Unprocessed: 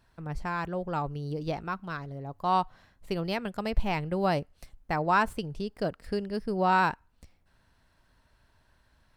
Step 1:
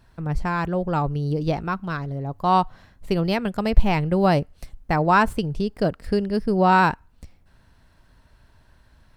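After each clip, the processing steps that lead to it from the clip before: bass shelf 350 Hz +5.5 dB; trim +6 dB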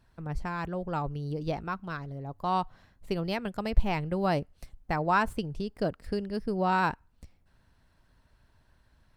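harmonic-percussive split harmonic -3 dB; trim -7 dB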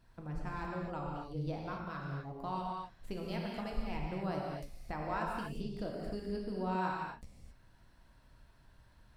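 compression 2:1, threshold -45 dBFS, peak gain reduction 16.5 dB; gated-style reverb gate 290 ms flat, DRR -2 dB; trim -2.5 dB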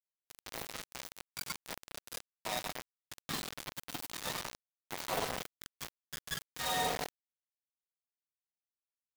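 spectrum inverted on a logarithmic axis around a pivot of 830 Hz; word length cut 6-bit, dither none; trim +2.5 dB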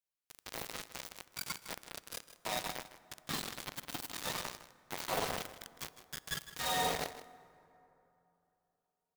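delay 157 ms -14 dB; plate-style reverb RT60 3.3 s, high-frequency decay 0.45×, DRR 17.5 dB

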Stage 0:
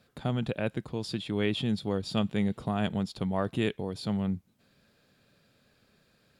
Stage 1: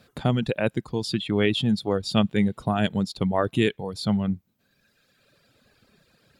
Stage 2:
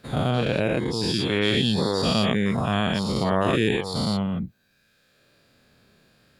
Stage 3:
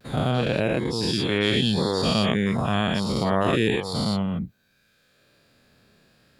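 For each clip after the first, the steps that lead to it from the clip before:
reverb removal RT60 1.6 s; trim +8 dB
every event in the spectrogram widened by 240 ms; trim -5 dB
vibrato 0.37 Hz 25 cents

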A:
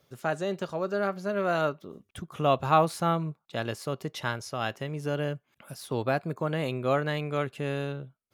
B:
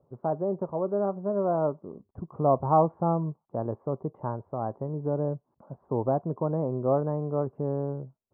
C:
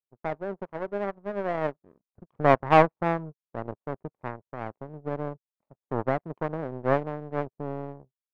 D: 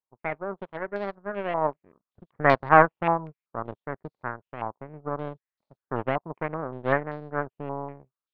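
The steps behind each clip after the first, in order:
elliptic low-pass 1 kHz, stop band 80 dB; trim +2.5 dB
power-law waveshaper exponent 2; trim +8 dB
step-sequenced low-pass 5.2 Hz 990–4300 Hz; trim -1.5 dB

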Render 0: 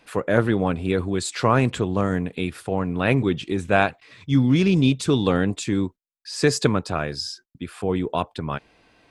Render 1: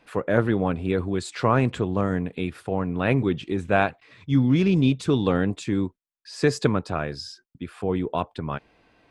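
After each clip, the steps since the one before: treble shelf 4 kHz -9 dB; trim -1.5 dB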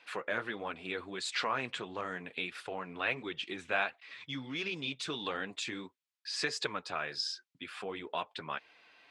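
compression 2:1, threshold -29 dBFS, peak gain reduction 8.5 dB; flange 1.5 Hz, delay 1.8 ms, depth 6.9 ms, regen -37%; band-pass filter 3.1 kHz, Q 0.76; trim +8.5 dB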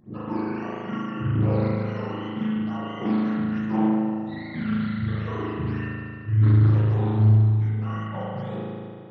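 spectrum inverted on a logarithmic axis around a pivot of 730 Hz; spring tank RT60 2.3 s, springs 37 ms, chirp 40 ms, DRR -7.5 dB; loudspeaker Doppler distortion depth 0.36 ms

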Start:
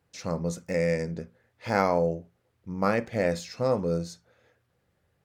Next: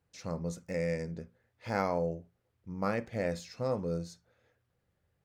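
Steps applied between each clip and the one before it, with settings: bass shelf 93 Hz +7 dB; trim -7.5 dB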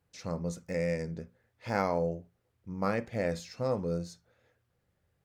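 wow and flutter 25 cents; trim +1.5 dB

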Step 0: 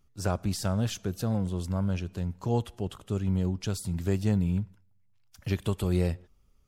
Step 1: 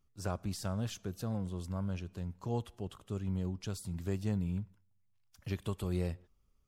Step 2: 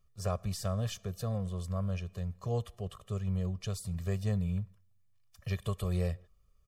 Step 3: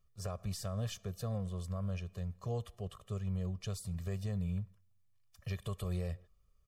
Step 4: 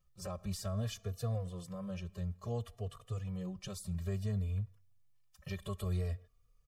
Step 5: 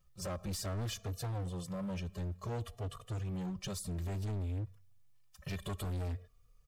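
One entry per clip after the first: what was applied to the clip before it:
peaking EQ 1.1 kHz +3.5 dB 0.21 oct; trim -8 dB
comb 1.7 ms, depth 90%
peak limiter -26 dBFS, peak gain reduction 6.5 dB; trim -3 dB
endless flanger 3.5 ms +0.58 Hz; trim +3 dB
hard clipper -39.5 dBFS, distortion -7 dB; trim +4.5 dB

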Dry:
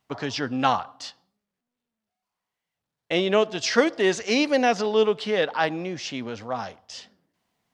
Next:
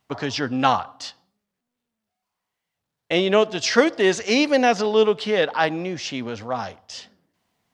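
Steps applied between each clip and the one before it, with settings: peaking EQ 92 Hz +3.5 dB 0.37 oct; trim +3 dB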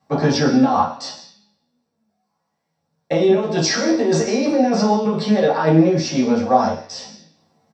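compressor with a negative ratio -23 dBFS, ratio -1; doubling 13 ms -4 dB; reverberation RT60 0.40 s, pre-delay 3 ms, DRR -7 dB; trim -10.5 dB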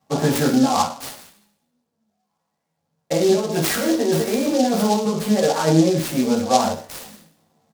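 delay time shaken by noise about 4.8 kHz, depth 0.056 ms; trim -2 dB

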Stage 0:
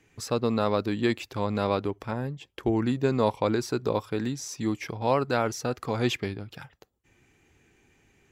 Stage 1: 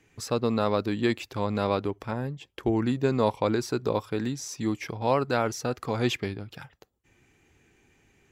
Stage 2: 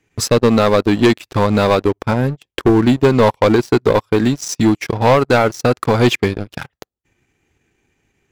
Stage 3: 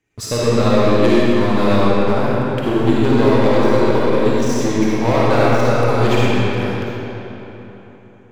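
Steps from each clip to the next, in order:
no audible change
transient shaper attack +3 dB, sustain -10 dB; waveshaping leveller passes 3; trim +4.5 dB
algorithmic reverb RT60 3.7 s, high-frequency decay 0.7×, pre-delay 15 ms, DRR -8 dB; trim -9.5 dB

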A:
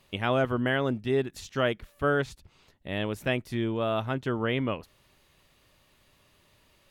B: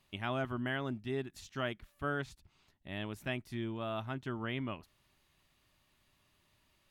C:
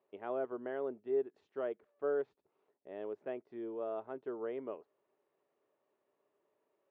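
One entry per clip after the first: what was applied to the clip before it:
peaking EQ 490 Hz -12.5 dB 0.31 oct; trim -8.5 dB
ladder band-pass 490 Hz, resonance 70%; trim +10 dB

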